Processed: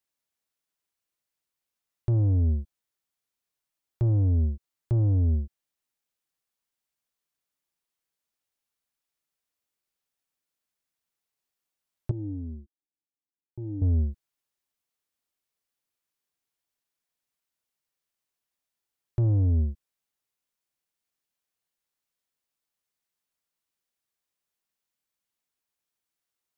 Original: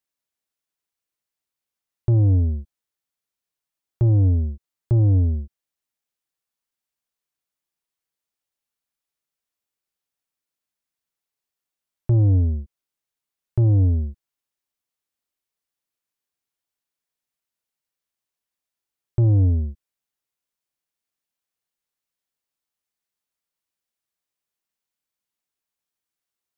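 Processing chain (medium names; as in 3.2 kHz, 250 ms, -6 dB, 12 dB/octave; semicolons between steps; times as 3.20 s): tracing distortion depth 0.08 ms; peak limiter -20 dBFS, peak gain reduction 6 dB; 12.11–13.82 s: cascade formant filter u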